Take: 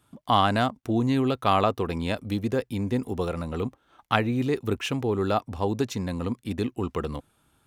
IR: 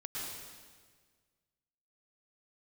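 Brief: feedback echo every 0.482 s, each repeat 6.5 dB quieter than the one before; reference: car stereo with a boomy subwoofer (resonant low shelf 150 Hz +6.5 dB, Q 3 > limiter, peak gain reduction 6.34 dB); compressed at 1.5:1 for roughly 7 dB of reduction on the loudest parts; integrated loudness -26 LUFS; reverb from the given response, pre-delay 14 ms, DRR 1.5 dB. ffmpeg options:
-filter_complex "[0:a]acompressor=threshold=-36dB:ratio=1.5,aecho=1:1:482|964|1446|1928|2410|2892:0.473|0.222|0.105|0.0491|0.0231|0.0109,asplit=2[a][b];[1:a]atrim=start_sample=2205,adelay=14[c];[b][c]afir=irnorm=-1:irlink=0,volume=-2.5dB[d];[a][d]amix=inputs=2:normalize=0,lowshelf=f=150:t=q:w=3:g=6.5,volume=1.5dB,alimiter=limit=-16dB:level=0:latency=1"

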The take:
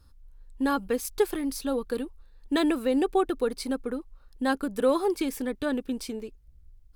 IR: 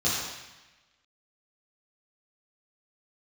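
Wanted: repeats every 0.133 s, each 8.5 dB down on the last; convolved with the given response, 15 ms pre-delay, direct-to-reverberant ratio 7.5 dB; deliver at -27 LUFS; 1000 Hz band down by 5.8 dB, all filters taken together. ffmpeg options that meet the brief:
-filter_complex "[0:a]equalizer=f=1k:t=o:g=-8,aecho=1:1:133|266|399|532:0.376|0.143|0.0543|0.0206,asplit=2[a][b];[1:a]atrim=start_sample=2205,adelay=15[c];[b][c]afir=irnorm=-1:irlink=0,volume=-19dB[d];[a][d]amix=inputs=2:normalize=0,volume=1dB"

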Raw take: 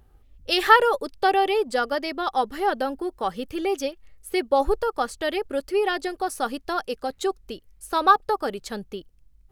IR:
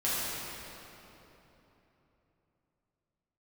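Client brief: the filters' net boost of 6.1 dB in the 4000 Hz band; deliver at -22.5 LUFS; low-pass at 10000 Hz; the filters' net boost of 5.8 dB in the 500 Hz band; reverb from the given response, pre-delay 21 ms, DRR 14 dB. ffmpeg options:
-filter_complex "[0:a]lowpass=10k,equalizer=f=500:t=o:g=7,equalizer=f=4k:t=o:g=8,asplit=2[a][b];[1:a]atrim=start_sample=2205,adelay=21[c];[b][c]afir=irnorm=-1:irlink=0,volume=-24dB[d];[a][d]amix=inputs=2:normalize=0,volume=-2.5dB"

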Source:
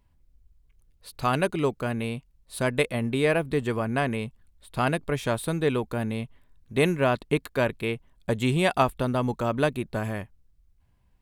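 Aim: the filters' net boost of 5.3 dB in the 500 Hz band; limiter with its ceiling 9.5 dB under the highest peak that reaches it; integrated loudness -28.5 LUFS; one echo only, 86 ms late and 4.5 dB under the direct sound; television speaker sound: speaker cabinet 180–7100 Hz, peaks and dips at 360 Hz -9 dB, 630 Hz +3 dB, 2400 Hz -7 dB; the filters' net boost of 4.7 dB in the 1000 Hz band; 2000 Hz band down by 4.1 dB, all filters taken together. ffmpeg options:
-af "equalizer=f=500:t=o:g=5.5,equalizer=f=1k:t=o:g=5,equalizer=f=2k:t=o:g=-5.5,alimiter=limit=-12.5dB:level=0:latency=1,highpass=f=180:w=0.5412,highpass=f=180:w=1.3066,equalizer=f=360:t=q:w=4:g=-9,equalizer=f=630:t=q:w=4:g=3,equalizer=f=2.4k:t=q:w=4:g=-7,lowpass=f=7.1k:w=0.5412,lowpass=f=7.1k:w=1.3066,aecho=1:1:86:0.596,volume=-3.5dB"

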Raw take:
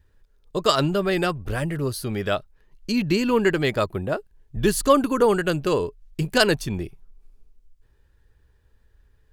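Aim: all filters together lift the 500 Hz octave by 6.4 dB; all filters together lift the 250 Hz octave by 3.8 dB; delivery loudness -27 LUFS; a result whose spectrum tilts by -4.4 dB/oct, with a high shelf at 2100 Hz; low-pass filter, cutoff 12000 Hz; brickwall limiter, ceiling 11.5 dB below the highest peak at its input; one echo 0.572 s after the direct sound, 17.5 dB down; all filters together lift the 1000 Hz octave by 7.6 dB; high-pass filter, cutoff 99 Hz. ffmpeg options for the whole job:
-af "highpass=99,lowpass=12k,equalizer=f=250:t=o:g=3,equalizer=f=500:t=o:g=5,equalizer=f=1k:t=o:g=7,highshelf=f=2.1k:g=4,alimiter=limit=-7.5dB:level=0:latency=1,aecho=1:1:572:0.133,volume=-7dB"

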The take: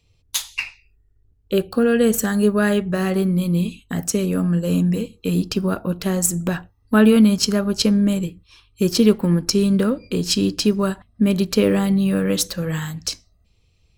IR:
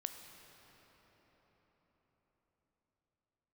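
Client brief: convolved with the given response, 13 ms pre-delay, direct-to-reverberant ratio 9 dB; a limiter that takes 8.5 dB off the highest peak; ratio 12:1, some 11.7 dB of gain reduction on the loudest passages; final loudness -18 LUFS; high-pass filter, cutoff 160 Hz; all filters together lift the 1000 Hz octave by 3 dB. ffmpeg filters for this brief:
-filter_complex "[0:a]highpass=160,equalizer=f=1k:t=o:g=4,acompressor=threshold=-21dB:ratio=12,alimiter=limit=-17.5dB:level=0:latency=1,asplit=2[a][b];[1:a]atrim=start_sample=2205,adelay=13[c];[b][c]afir=irnorm=-1:irlink=0,volume=-7dB[d];[a][d]amix=inputs=2:normalize=0,volume=10dB"

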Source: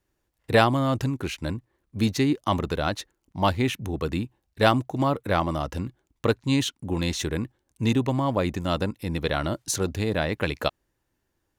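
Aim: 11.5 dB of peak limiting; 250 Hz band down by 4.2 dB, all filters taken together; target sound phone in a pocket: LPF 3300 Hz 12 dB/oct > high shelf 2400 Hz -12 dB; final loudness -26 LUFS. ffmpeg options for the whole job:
-af "equalizer=f=250:t=o:g=-5,alimiter=limit=-15dB:level=0:latency=1,lowpass=3.3k,highshelf=f=2.4k:g=-12,volume=4.5dB"

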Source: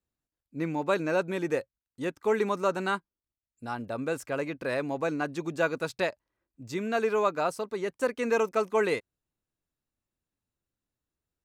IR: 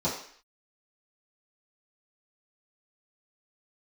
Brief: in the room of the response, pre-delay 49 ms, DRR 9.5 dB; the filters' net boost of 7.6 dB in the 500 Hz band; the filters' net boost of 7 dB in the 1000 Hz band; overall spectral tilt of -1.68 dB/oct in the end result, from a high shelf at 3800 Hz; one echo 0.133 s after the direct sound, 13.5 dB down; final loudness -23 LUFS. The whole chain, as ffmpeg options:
-filter_complex "[0:a]equalizer=f=500:t=o:g=7.5,equalizer=f=1k:t=o:g=7,highshelf=f=3.8k:g=-5.5,aecho=1:1:133:0.211,asplit=2[a][b];[1:a]atrim=start_sample=2205,adelay=49[c];[b][c]afir=irnorm=-1:irlink=0,volume=-19dB[d];[a][d]amix=inputs=2:normalize=0,volume=-1dB"

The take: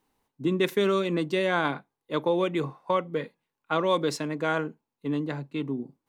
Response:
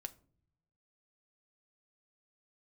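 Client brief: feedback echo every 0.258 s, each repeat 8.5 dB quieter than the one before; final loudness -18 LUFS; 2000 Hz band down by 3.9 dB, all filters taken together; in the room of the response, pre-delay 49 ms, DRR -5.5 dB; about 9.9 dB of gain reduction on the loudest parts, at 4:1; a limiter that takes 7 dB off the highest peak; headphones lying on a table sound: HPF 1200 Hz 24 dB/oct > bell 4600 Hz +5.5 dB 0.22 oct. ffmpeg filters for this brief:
-filter_complex "[0:a]equalizer=f=2k:t=o:g=-5,acompressor=threshold=-32dB:ratio=4,alimiter=level_in=2.5dB:limit=-24dB:level=0:latency=1,volume=-2.5dB,aecho=1:1:258|516|774|1032:0.376|0.143|0.0543|0.0206,asplit=2[a][b];[1:a]atrim=start_sample=2205,adelay=49[c];[b][c]afir=irnorm=-1:irlink=0,volume=9.5dB[d];[a][d]amix=inputs=2:normalize=0,highpass=f=1.2k:w=0.5412,highpass=f=1.2k:w=1.3066,equalizer=f=4.6k:t=o:w=0.22:g=5.5,volume=22dB"

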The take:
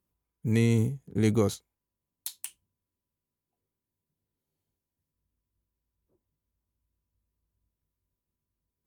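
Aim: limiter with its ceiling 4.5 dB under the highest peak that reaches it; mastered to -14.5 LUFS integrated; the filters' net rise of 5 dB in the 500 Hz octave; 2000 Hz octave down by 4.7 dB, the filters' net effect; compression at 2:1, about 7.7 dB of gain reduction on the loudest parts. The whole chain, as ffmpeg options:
-af "equalizer=f=500:t=o:g=6,equalizer=f=2k:t=o:g=-5.5,acompressor=threshold=-31dB:ratio=2,volume=21.5dB,alimiter=limit=-1dB:level=0:latency=1"

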